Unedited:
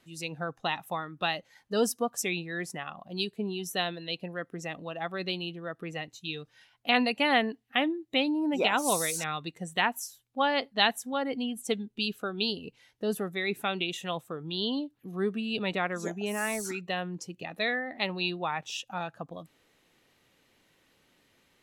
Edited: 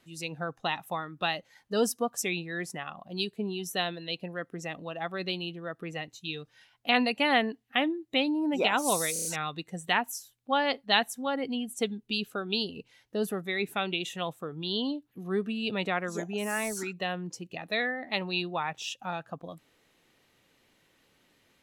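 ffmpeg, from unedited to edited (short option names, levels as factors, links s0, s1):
-filter_complex "[0:a]asplit=5[s0][s1][s2][s3][s4];[s0]atrim=end=9.162[s5];[s1]atrim=start=9.128:end=9.162[s6];[s2]atrim=start=9.128:end=9.162[s7];[s3]atrim=start=9.128:end=9.162[s8];[s4]atrim=start=9.128[s9];[s5][s6]acrossfade=d=0.004:c1=hsin:c2=hsin[s10];[s10][s7]acrossfade=d=0.004:c1=hsin:c2=hsin[s11];[s11][s8]acrossfade=d=0.004:c1=hsin:c2=hsin[s12];[s12][s9]acrossfade=d=0.004:c1=hsin:c2=hsin"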